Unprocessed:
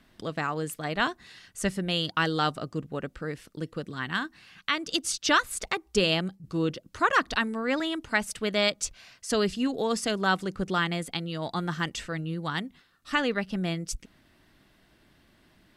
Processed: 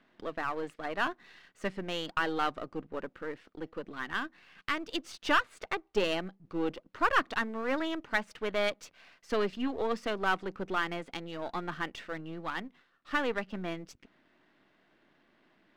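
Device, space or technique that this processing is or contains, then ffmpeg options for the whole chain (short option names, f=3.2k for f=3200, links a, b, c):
crystal radio: -af "highpass=250,lowpass=2.6k,aeval=exprs='if(lt(val(0),0),0.447*val(0),val(0))':c=same"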